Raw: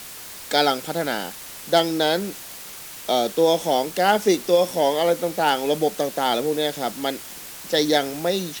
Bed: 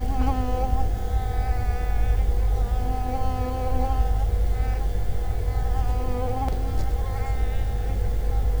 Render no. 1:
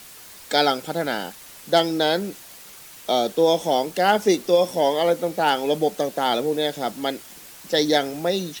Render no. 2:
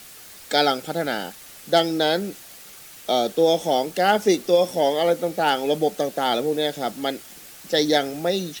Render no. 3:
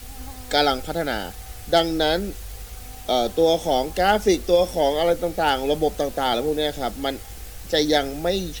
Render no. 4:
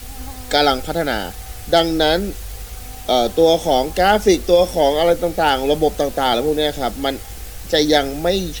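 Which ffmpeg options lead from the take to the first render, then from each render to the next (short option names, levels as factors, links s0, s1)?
-af "afftdn=nr=6:nf=-38"
-af "bandreject=f=990:w=8"
-filter_complex "[1:a]volume=0.178[s0];[0:a][s0]amix=inputs=2:normalize=0"
-af "volume=1.78,alimiter=limit=0.794:level=0:latency=1"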